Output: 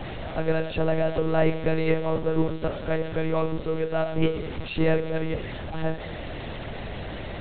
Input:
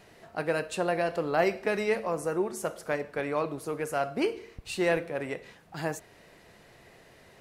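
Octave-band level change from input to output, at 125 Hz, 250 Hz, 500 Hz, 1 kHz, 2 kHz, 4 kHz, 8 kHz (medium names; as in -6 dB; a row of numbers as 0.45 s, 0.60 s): +12.5 dB, +6.5 dB, +3.5 dB, 0.0 dB, 0.0 dB, +3.5 dB, under -35 dB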